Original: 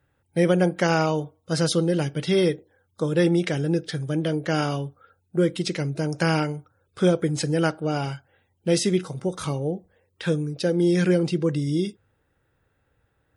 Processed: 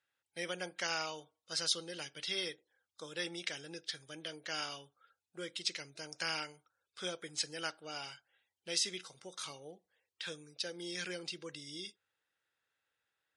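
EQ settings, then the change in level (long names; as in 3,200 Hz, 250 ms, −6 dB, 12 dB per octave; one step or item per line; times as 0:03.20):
resonant band-pass 4,500 Hz, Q 0.88
−3.5 dB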